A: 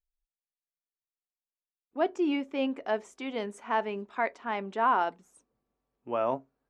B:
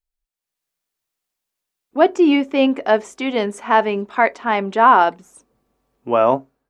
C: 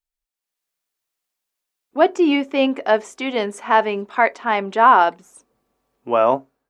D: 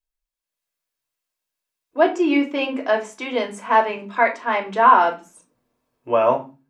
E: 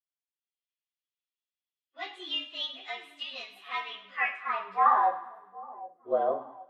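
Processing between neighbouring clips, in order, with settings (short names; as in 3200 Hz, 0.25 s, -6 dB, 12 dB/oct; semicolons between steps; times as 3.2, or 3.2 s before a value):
AGC gain up to 12 dB; gain +2.5 dB
low shelf 250 Hz -7 dB
reverb RT60 0.30 s, pre-delay 3 ms, DRR 2 dB; gain -4.5 dB
inharmonic rescaling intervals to 110%; band-pass sweep 3100 Hz -> 460 Hz, 3.81–5.45; split-band echo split 790 Hz, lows 0.77 s, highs 0.103 s, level -14 dB; gain -1.5 dB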